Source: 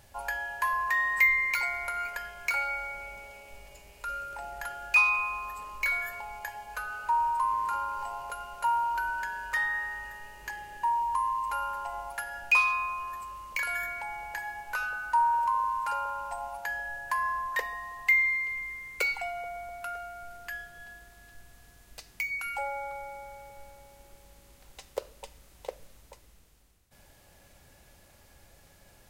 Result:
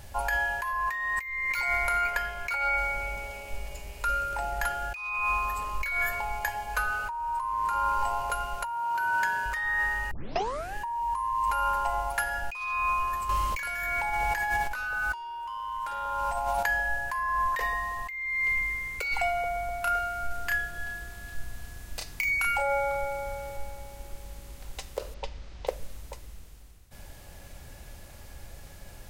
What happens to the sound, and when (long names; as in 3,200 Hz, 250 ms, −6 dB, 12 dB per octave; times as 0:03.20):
0:02.01–0:02.78: bass and treble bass −2 dB, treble −4 dB
0:08.74–0:09.46: high-pass filter 93 Hz 24 dB per octave
0:10.11: tape start 0.64 s
0:13.29–0:16.63: leveller curve on the samples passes 2
0:19.84–0:23.57: double-tracking delay 32 ms −3.5 dB
0:25.14–0:25.67: low-pass filter 5,400 Hz 24 dB per octave
whole clip: low-shelf EQ 94 Hz +9.5 dB; compressor whose output falls as the input rises −33 dBFS, ratio −1; level +4 dB